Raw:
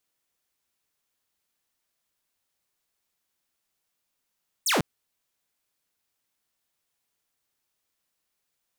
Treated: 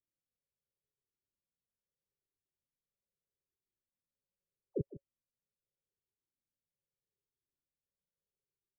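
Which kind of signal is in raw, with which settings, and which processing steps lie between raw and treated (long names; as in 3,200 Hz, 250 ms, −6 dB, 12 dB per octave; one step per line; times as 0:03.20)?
single falling chirp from 9,300 Hz, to 120 Hz, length 0.15 s saw, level −18 dB
Chebyshev low-pass with heavy ripple 570 Hz, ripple 6 dB
single-tap delay 156 ms −14.5 dB
flanger whose copies keep moving one way falling 0.8 Hz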